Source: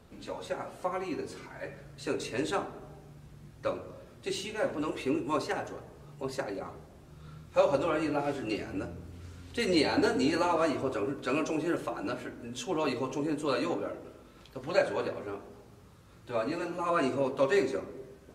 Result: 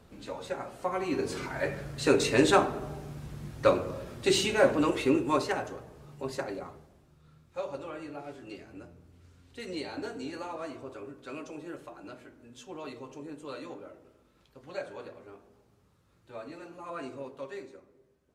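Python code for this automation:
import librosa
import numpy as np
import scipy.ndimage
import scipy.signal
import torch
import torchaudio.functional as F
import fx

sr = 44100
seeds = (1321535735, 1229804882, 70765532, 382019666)

y = fx.gain(x, sr, db=fx.line((0.81, 0.0), (1.43, 9.5), (4.48, 9.5), (5.83, 0.0), (6.53, 0.0), (7.21, -11.0), (17.2, -11.0), (17.83, -18.5)))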